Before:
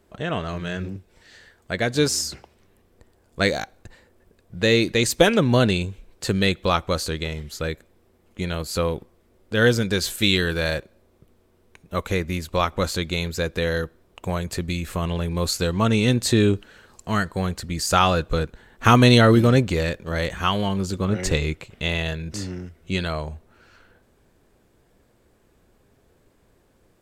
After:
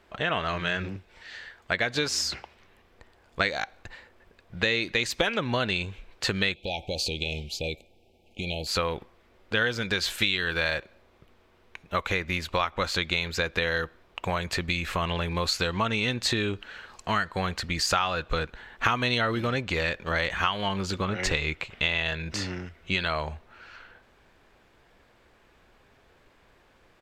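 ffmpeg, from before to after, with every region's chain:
-filter_complex "[0:a]asettb=1/sr,asplit=3[s0][s1][s2];[s0]atrim=end=6.544[s3];[s1]atrim=start=6.54:end=8.67,asetpts=PTS-STARTPTS,afade=t=in:d=0.004:c=qsin,afade=t=out:st=2.126:d=0.004:c=qsin,acompressor=threshold=0.0562:ratio=10:attack=3.2:release=140:knee=1:detection=peak,asuperstop=centerf=1400:order=20:qfactor=0.97[s4];[s2]atrim=start=8.666[s5];[s3][s4]acrossfade=d=0.004:c1=hsin:c2=qsin[s6];[s6][s5]acrossfade=d=0.004:c1=qsin:c2=hsin,firequalizer=gain_entry='entry(420,0);entry(830,6);entry(2400,9);entry(8800,-7)':delay=0.05:min_phase=1,acompressor=threshold=0.0794:ratio=6,equalizer=f=150:w=0.47:g=-4"

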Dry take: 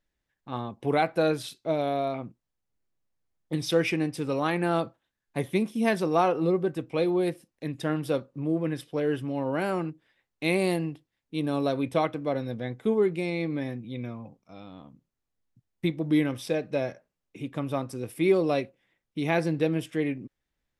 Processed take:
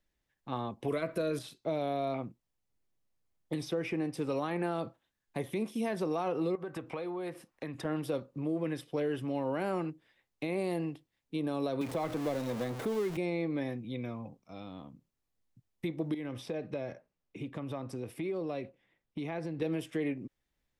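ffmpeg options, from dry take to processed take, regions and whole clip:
-filter_complex "[0:a]asettb=1/sr,asplit=3[s0][s1][s2];[s0]atrim=end=0.884[s3];[s1]atrim=start=0.88:end=1.39,asetpts=PTS-STARTPTS,afade=t=in:d=0.004:c=qsin,afade=t=out:st=0.506:d=0.004:c=qsin,highshelf=f=7300:g=7.5,acontrast=37,asuperstop=centerf=820:order=8:qfactor=3.4[s4];[s2]atrim=start=1.386[s5];[s3][s4]acrossfade=d=0.004:c1=hsin:c2=qsin[s6];[s6][s5]acrossfade=d=0.004:c1=qsin:c2=hsin,asettb=1/sr,asplit=3[s7][s8][s9];[s7]atrim=end=6.554[s10];[s8]atrim=start=6.55:end=7.85,asetpts=PTS-STARTPTS,afade=t=in:d=0.004:c=qsin,afade=t=out:st=1.296:d=0.004:c=qsin,equalizer=f=1200:t=o:w=2:g=13,acompressor=threshold=0.02:ratio=10:attack=3.2:release=140:knee=1:detection=peak[s11];[s9]atrim=start=7.846[s12];[s10][s11]acrossfade=d=0.004:c1=hsin:c2=qsin[s13];[s13][s12]acrossfade=d=0.004:c1=qsin:c2=hsin,asettb=1/sr,asplit=3[s14][s15][s16];[s14]atrim=end=11.814[s17];[s15]atrim=start=11.81:end=13.17,asetpts=PTS-STARTPTS,afade=t=in:d=0.004:c=qsin,afade=t=out:st=1.356:d=0.004:c=qsin,aeval=exprs='val(0)+0.5*0.0299*sgn(val(0))':c=same,acrossover=split=110|1400[s18][s19][s20];[s18]acompressor=threshold=0.00398:ratio=4[s21];[s19]acompressor=threshold=0.0447:ratio=4[s22];[s20]acompressor=threshold=0.00891:ratio=4[s23];[s21][s22][s23]amix=inputs=3:normalize=0[s24];[s16]atrim=start=13.166[s25];[s17][s24]acrossfade=d=0.004:c1=hsin:c2=qsin[s26];[s26][s25]acrossfade=d=0.004:c1=qsin:c2=hsin,asettb=1/sr,asplit=3[s27][s28][s29];[s27]atrim=end=16.144[s30];[s28]atrim=start=16.14:end=19.62,asetpts=PTS-STARTPTS,afade=t=in:d=0.004:c=qsin,afade=t=out:st=3.476:d=0.004:c=qsin,lowpass=f=3300:p=1,acompressor=threshold=0.0251:ratio=6:attack=3.2:release=140:knee=1:detection=peak[s31];[s29]atrim=start=19.616[s32];[s30][s31]acrossfade=d=0.004:c1=hsin:c2=qsin[s33];[s33][s32]acrossfade=d=0.004:c1=qsin:c2=hsin,alimiter=limit=0.1:level=0:latency=1:release=67,equalizer=f=1500:w=3.6:g=-2.5,acrossover=split=300|1700[s34][s35][s36];[s34]acompressor=threshold=0.0112:ratio=4[s37];[s35]acompressor=threshold=0.0282:ratio=4[s38];[s36]acompressor=threshold=0.00398:ratio=4[s39];[s37][s38][s39]amix=inputs=3:normalize=0"

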